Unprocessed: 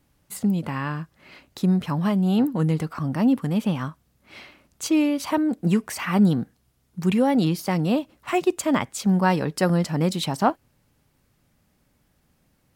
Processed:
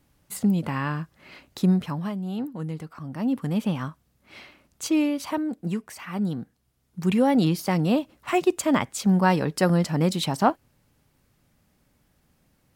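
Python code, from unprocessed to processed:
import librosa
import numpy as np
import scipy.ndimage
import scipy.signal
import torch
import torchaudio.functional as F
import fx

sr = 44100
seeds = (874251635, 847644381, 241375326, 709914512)

y = fx.gain(x, sr, db=fx.line((1.69, 0.5), (2.19, -10.0), (3.06, -10.0), (3.48, -2.0), (5.03, -2.0), (6.05, -10.5), (7.26, 0.0)))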